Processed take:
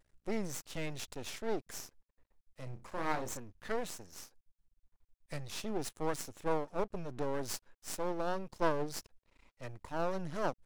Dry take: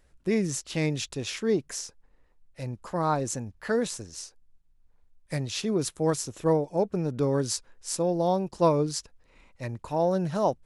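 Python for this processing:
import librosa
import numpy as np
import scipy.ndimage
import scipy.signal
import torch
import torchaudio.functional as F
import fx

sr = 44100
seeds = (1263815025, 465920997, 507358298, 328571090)

y = fx.room_flutter(x, sr, wall_m=5.5, rt60_s=0.22, at=(2.63, 3.37))
y = fx.vibrato(y, sr, rate_hz=0.32, depth_cents=13.0)
y = np.maximum(y, 0.0)
y = F.gain(torch.from_numpy(y), -5.5).numpy()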